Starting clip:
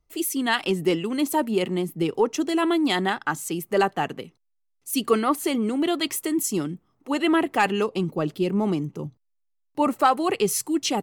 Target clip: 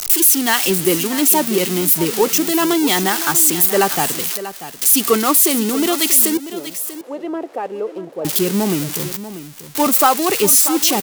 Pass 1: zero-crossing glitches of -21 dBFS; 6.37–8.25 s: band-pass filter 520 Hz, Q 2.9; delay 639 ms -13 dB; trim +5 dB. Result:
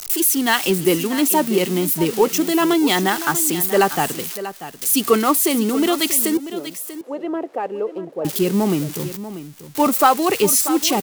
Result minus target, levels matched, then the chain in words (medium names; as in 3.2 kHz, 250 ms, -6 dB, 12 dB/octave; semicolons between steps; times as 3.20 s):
zero-crossing glitches: distortion -7 dB
zero-crossing glitches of -13.5 dBFS; 6.37–8.25 s: band-pass filter 520 Hz, Q 2.9; delay 639 ms -13 dB; trim +5 dB